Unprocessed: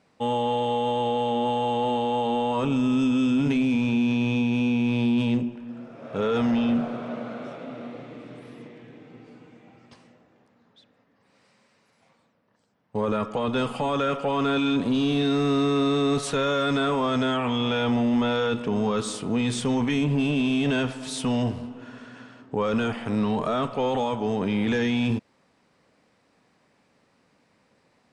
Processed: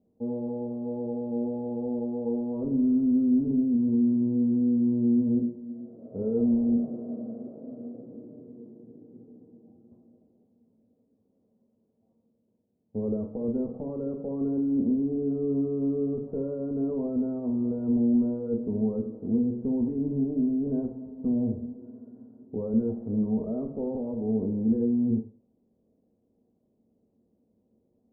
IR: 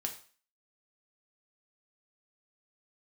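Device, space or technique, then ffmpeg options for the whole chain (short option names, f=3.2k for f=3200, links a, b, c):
next room: -filter_complex "[0:a]lowpass=f=500:w=0.5412,lowpass=f=500:w=1.3066[a];[1:a]atrim=start_sample=2205[b];[a][b]afir=irnorm=-1:irlink=0,volume=-3dB"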